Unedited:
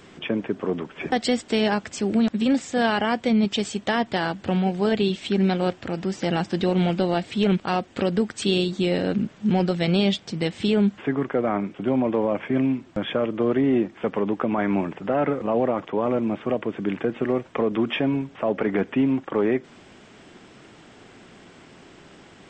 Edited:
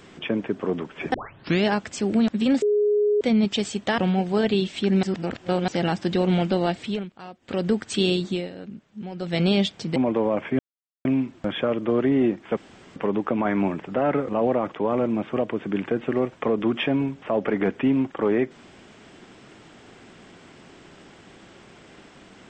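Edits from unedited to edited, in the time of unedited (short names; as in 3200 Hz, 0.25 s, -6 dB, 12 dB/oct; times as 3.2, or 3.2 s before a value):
1.14 tape start 0.51 s
2.62–3.21 bleep 416 Hz -17 dBFS
3.98–4.46 cut
5.51–6.16 reverse
7.27–8.14 dip -16.5 dB, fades 0.26 s
8.73–9.87 dip -14.5 dB, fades 0.24 s
10.44–11.94 cut
12.57 insert silence 0.46 s
14.09 insert room tone 0.39 s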